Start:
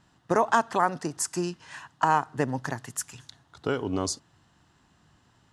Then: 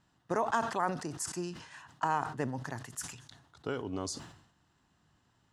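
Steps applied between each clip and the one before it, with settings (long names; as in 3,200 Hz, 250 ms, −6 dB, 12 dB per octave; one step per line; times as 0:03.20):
level that may fall only so fast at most 80 dB per second
level −8.5 dB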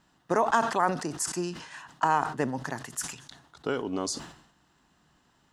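parametric band 100 Hz −15 dB 0.55 octaves
level +6.5 dB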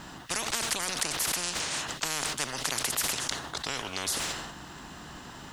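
every bin compressed towards the loudest bin 10 to 1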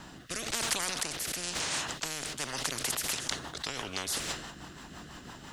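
rotating-speaker cabinet horn 1 Hz, later 6 Hz, at 0:02.33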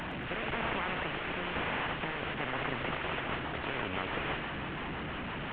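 linear delta modulator 16 kbit/s, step −35 dBFS
echo with a time of its own for lows and highs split 1,800 Hz, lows 648 ms, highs 115 ms, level −14 dB
level +3 dB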